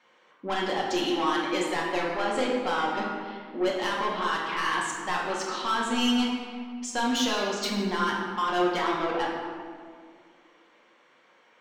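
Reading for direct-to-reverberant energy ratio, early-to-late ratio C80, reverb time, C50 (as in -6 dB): -4.5 dB, 3.0 dB, 2.0 s, 1.0 dB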